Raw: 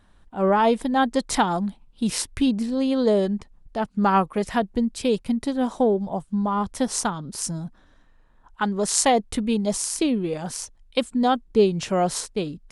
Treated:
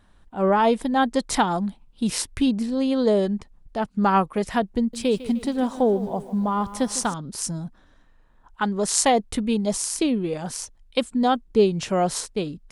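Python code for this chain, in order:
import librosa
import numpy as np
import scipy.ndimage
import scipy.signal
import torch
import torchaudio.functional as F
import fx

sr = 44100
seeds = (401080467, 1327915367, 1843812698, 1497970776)

y = fx.echo_crushed(x, sr, ms=152, feedback_pct=55, bits=8, wet_db=-15.0, at=(4.78, 7.14))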